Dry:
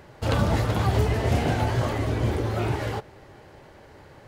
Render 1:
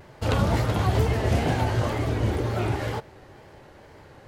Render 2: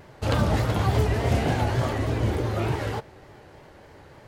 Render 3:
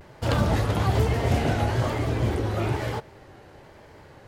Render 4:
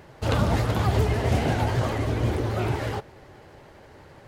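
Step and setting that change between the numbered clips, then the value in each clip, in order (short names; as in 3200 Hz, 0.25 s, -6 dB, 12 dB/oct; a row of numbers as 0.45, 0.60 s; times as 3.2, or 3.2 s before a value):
vibrato, rate: 2.1, 3.4, 1.1, 12 Hz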